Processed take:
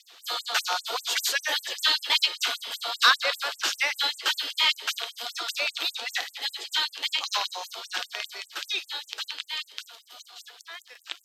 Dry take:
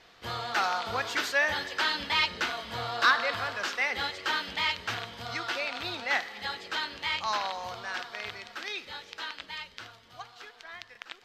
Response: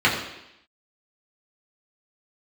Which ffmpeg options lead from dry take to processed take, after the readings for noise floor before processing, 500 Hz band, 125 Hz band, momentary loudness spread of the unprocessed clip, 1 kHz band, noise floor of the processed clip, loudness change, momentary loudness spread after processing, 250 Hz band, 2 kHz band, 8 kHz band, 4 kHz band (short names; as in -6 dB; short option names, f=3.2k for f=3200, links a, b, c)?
-57 dBFS, -2.5 dB, under -40 dB, 18 LU, -1.0 dB, -58 dBFS, +3.5 dB, 18 LU, -9.0 dB, +0.5 dB, +11.0 dB, +8.0 dB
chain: -af "aexciter=amount=2.2:drive=6.4:freq=2.8k,afftfilt=real='re*gte(b*sr/1024,240*pow(7500/240,0.5+0.5*sin(2*PI*5.1*pts/sr)))':imag='im*gte(b*sr/1024,240*pow(7500/240,0.5+0.5*sin(2*PI*5.1*pts/sr)))':win_size=1024:overlap=0.75,volume=2.5dB"